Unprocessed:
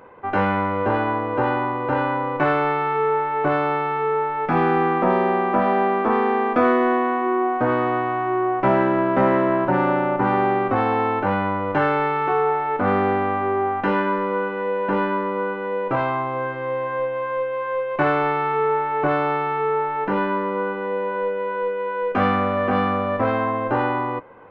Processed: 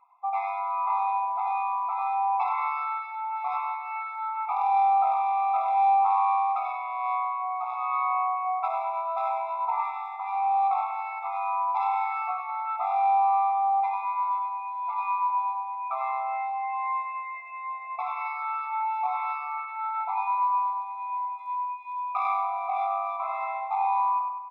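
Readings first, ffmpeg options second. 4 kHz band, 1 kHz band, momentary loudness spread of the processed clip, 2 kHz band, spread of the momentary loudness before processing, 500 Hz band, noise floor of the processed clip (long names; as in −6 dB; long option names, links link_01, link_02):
below −15 dB, −2.0 dB, 9 LU, −13.0 dB, 6 LU, −21.5 dB, −37 dBFS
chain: -filter_complex "[0:a]asplit=2[link_01][link_02];[link_02]adelay=32,volume=-10.5dB[link_03];[link_01][link_03]amix=inputs=2:normalize=0,afftdn=noise_reduction=17:noise_floor=-31,aphaser=in_gain=1:out_gain=1:delay=1.8:decay=0.41:speed=0.28:type=triangular,asoftclip=type=tanh:threshold=-10.5dB,asplit=2[link_04][link_05];[link_05]aecho=0:1:198|396:0.0794|0.023[link_06];[link_04][link_06]amix=inputs=2:normalize=0,acompressor=threshold=-23dB:ratio=4,asplit=2[link_07][link_08];[link_08]adelay=98,lowpass=frequency=3100:poles=1,volume=-3.5dB,asplit=2[link_09][link_10];[link_10]adelay=98,lowpass=frequency=3100:poles=1,volume=0.49,asplit=2[link_11][link_12];[link_12]adelay=98,lowpass=frequency=3100:poles=1,volume=0.49,asplit=2[link_13][link_14];[link_14]adelay=98,lowpass=frequency=3100:poles=1,volume=0.49,asplit=2[link_15][link_16];[link_16]adelay=98,lowpass=frequency=3100:poles=1,volume=0.49,asplit=2[link_17][link_18];[link_18]adelay=98,lowpass=frequency=3100:poles=1,volume=0.49[link_19];[link_09][link_11][link_13][link_15][link_17][link_19]amix=inputs=6:normalize=0[link_20];[link_07][link_20]amix=inputs=2:normalize=0,afftfilt=real='re*eq(mod(floor(b*sr/1024/680),2),1)':imag='im*eq(mod(floor(b*sr/1024/680),2),1)':win_size=1024:overlap=0.75"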